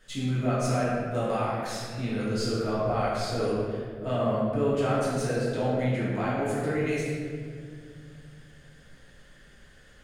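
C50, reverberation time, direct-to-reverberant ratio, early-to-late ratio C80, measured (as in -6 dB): -2.5 dB, 2.2 s, -9.5 dB, 0.0 dB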